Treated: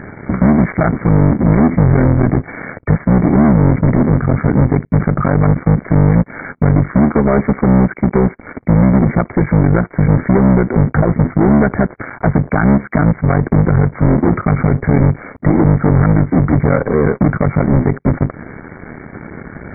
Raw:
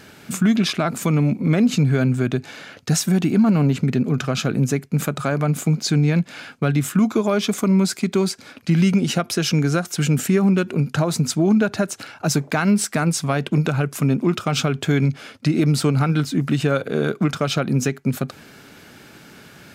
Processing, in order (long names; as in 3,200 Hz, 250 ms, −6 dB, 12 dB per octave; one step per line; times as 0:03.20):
sub-harmonics by changed cycles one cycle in 3, muted
low-shelf EQ 470 Hz +7.5 dB
in parallel at −0.5 dB: downward compressor, threshold −27 dBFS, peak gain reduction 19 dB
on the sum: leveller curve on the samples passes 3
linear-phase brick-wall low-pass 2,300 Hz
level −3.5 dB